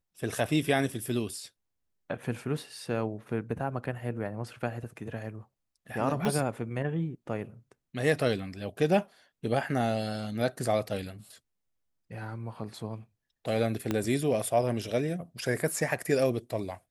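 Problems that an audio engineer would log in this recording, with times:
6.25 s: pop -17 dBFS
13.91 s: pop -15 dBFS

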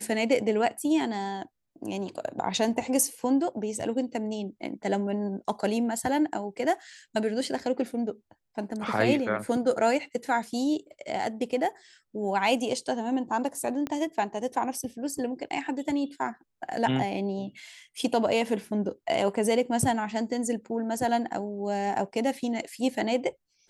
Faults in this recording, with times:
13.87 s: pop -18 dBFS

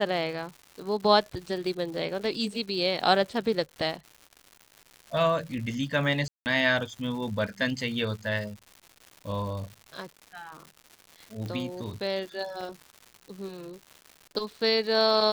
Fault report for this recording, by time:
crackle 260 per s -38 dBFS
6.28–6.46 s: dropout 179 ms
11.46 s: pop -24 dBFS
12.61 s: dropout 2.7 ms

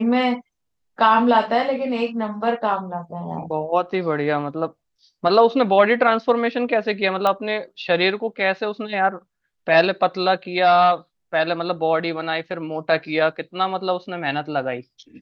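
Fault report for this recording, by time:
7.27 s: pop -9 dBFS

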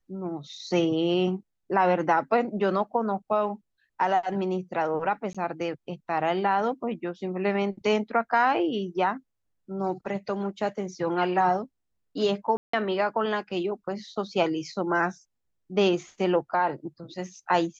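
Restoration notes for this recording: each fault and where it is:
5.33–5.35 s: dropout 16 ms
12.57–12.73 s: dropout 164 ms

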